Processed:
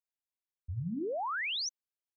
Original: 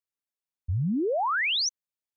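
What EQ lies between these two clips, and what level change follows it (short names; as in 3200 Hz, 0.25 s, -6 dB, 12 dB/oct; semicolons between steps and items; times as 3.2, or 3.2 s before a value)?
notches 50/100/150/200/250/300 Hz; -8.5 dB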